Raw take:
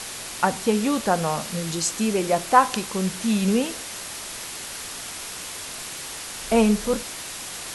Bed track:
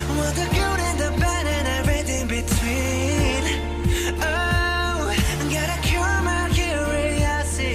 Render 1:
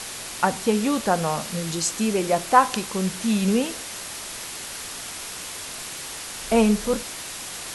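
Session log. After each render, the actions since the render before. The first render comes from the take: nothing audible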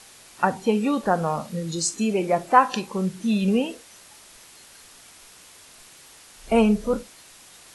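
noise print and reduce 14 dB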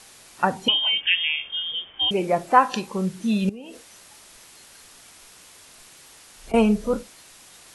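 0.68–2.11 inverted band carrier 3400 Hz; 3.49–6.54 compressor 10:1, threshold -35 dBFS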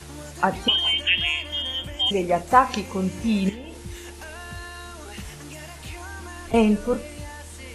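add bed track -16.5 dB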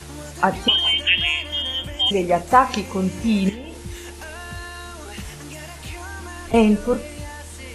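gain +3 dB; limiter -1 dBFS, peak gain reduction 2 dB

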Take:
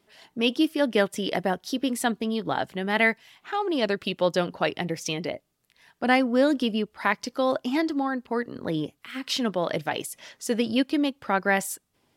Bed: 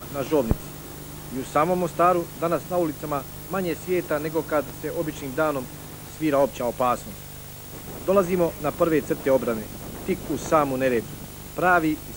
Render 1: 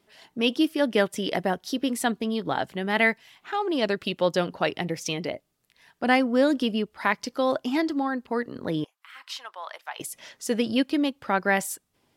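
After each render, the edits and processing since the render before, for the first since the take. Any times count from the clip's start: 8.84–10 ladder high-pass 820 Hz, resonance 45%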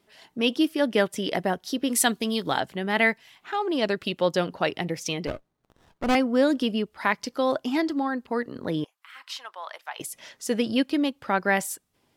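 1.9–2.6 high shelf 2600 Hz +11.5 dB; 5.27–6.15 running maximum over 17 samples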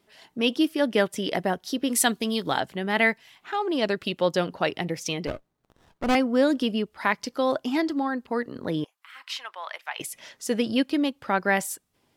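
9.27–10.19 bell 2300 Hz +7 dB 0.99 oct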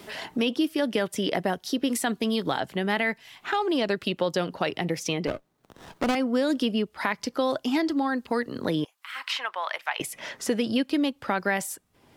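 limiter -14.5 dBFS, peak gain reduction 6 dB; three-band squash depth 70%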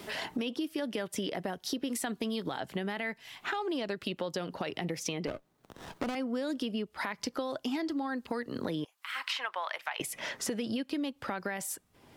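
limiter -16.5 dBFS, peak gain reduction 7 dB; compressor, threshold -31 dBFS, peak gain reduction 10 dB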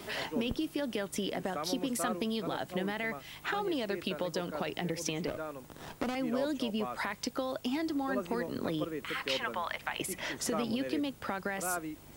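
add bed -17.5 dB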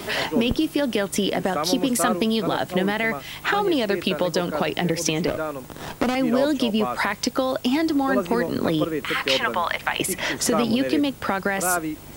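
gain +12 dB

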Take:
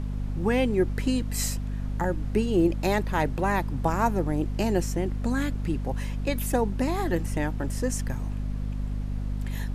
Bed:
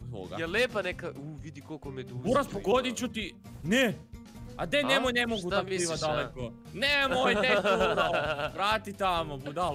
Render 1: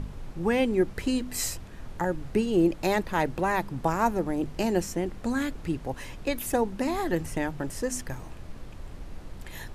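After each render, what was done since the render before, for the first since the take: de-hum 50 Hz, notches 5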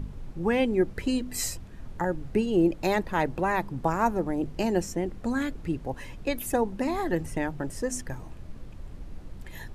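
denoiser 6 dB, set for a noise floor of -43 dBFS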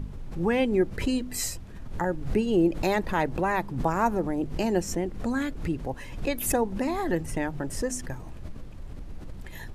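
backwards sustainer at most 81 dB/s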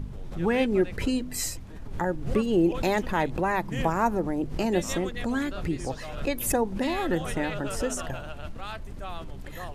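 add bed -11 dB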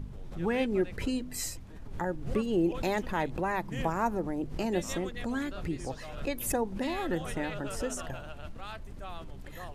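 gain -5 dB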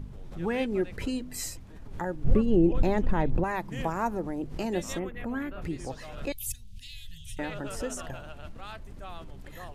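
2.24–3.44 tilt -3 dB/oct; 4.99–5.62 band shelf 5700 Hz -14.5 dB; 6.32–7.39 elliptic band-stop 110–3100 Hz, stop band 50 dB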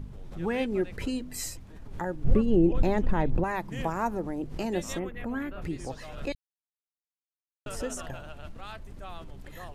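6.35–7.66 mute

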